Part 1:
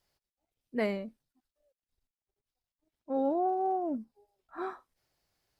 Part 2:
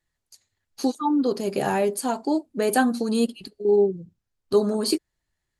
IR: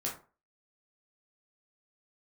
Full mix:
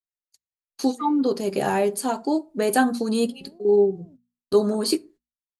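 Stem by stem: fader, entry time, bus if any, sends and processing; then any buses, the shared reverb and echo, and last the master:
−15.5 dB, 0.20 s, send −15 dB, parametric band 870 Hz −13 dB 2.3 octaves
0.0 dB, 0.00 s, send −18 dB, no processing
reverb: on, RT60 0.35 s, pre-delay 7 ms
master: noise gate −46 dBFS, range −33 dB; mains-hum notches 60/120/180/240 Hz

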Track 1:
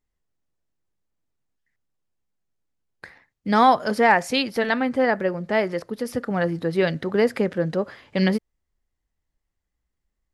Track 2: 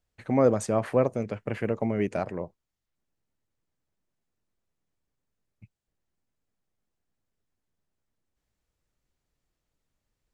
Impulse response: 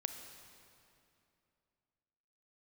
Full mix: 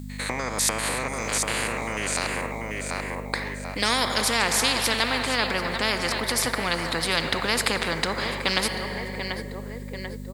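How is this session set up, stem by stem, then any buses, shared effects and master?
−7.0 dB, 0.30 s, send −4.5 dB, echo send −16.5 dB, no processing
−3.0 dB, 0.00 s, no send, echo send −8 dB, spectrum averaged block by block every 100 ms; downward compressor 6 to 1, threshold −28 dBFS, peak gain reduction 11 dB; spectral tilt +4.5 dB per octave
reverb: on, RT60 2.7 s, pre-delay 29 ms
echo: repeating echo 739 ms, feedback 35%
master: EQ curve with evenly spaced ripples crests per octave 0.99, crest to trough 7 dB; mains hum 50 Hz, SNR 15 dB; every bin compressed towards the loudest bin 4 to 1

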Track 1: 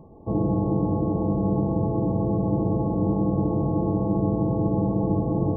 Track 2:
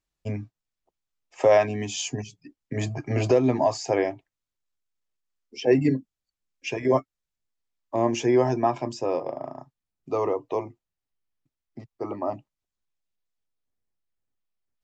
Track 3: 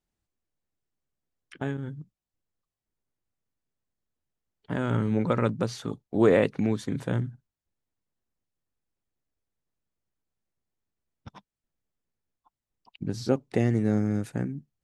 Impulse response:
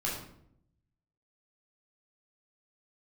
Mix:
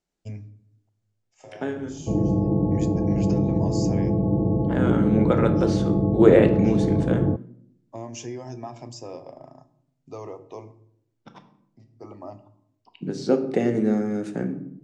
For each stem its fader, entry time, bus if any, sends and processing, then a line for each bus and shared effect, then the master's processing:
+2.0 dB, 1.80 s, no send, Bessel low-pass filter 600 Hz
−12.5 dB, 0.00 s, send −14.5 dB, bass and treble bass +7 dB, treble +13 dB; downward compressor 5 to 1, threshold −20 dBFS, peak gain reduction 7.5 dB; automatic ducking −20 dB, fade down 0.45 s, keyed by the third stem
−1.5 dB, 0.00 s, send −9 dB, Butterworth high-pass 150 Hz 36 dB per octave; parametric band 400 Hz +6 dB 1.1 octaves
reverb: on, RT60 0.70 s, pre-delay 11 ms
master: low-pass filter 8,200 Hz 24 dB per octave

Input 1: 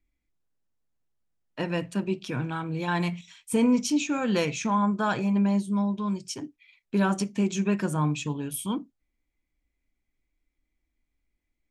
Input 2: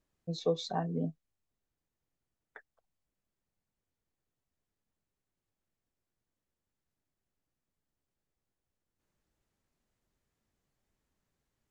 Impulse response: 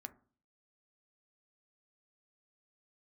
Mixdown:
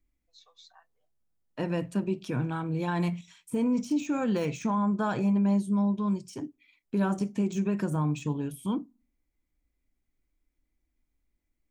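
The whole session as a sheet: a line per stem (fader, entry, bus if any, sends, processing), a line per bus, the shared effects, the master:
+0.5 dB, 0.00 s, send −16.5 dB, de-essing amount 90%; parametric band 3,000 Hz −7 dB 2.8 octaves
−11.0 dB, 0.00 s, send −18.5 dB, inverse Chebyshev high-pass filter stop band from 180 Hz, stop band 80 dB; automatic ducking −7 dB, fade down 1.80 s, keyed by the first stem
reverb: on, RT60 0.45 s, pre-delay 4 ms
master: brickwall limiter −20 dBFS, peak gain reduction 7.5 dB

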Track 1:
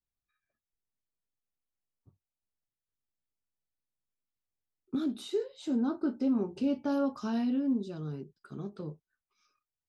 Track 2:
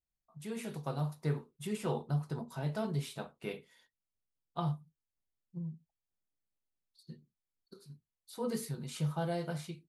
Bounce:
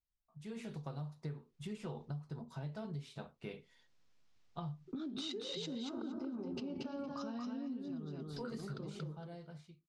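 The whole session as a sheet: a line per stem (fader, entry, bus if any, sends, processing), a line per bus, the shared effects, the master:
−3.5 dB, 0.00 s, no send, echo send −3.5 dB, low-pass filter 6,100 Hz 24 dB per octave; noise gate with hold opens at −52 dBFS; background raised ahead of every attack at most 34 dB per second
0:08.78 −7.5 dB → 0:09.23 −19 dB, 0.00 s, no send, no echo send, Chebyshev low-pass filter 5,700 Hz, order 2; low-shelf EQ 120 Hz +11.5 dB; automatic gain control gain up to 3.5 dB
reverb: not used
echo: repeating echo 231 ms, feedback 17%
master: downward compressor 6 to 1, threshold −40 dBFS, peak gain reduction 13.5 dB

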